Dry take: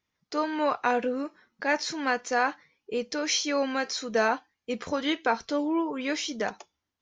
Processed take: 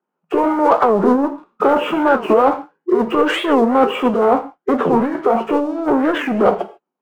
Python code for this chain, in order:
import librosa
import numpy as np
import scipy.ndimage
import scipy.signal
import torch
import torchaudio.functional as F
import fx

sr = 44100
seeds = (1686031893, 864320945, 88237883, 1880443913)

y = fx.freq_compress(x, sr, knee_hz=1300.0, ratio=1.5)
y = scipy.signal.sosfilt(scipy.signal.cheby1(10, 1.0, 160.0, 'highpass', fs=sr, output='sos'), y)
y = fx.tilt_eq(y, sr, slope=-3.5)
y = fx.over_compress(y, sr, threshold_db=-28.0, ratio=-1.0)
y = fx.leveller(y, sr, passes=3)
y = fx.band_shelf(y, sr, hz=790.0, db=10.5, octaves=2.4)
y = fx.rev_gated(y, sr, seeds[0], gate_ms=170, shape='falling', drr_db=7.0)
y = fx.formant_shift(y, sr, semitones=-3)
y = fx.record_warp(y, sr, rpm=45.0, depth_cents=250.0)
y = y * 10.0 ** (-1.0 / 20.0)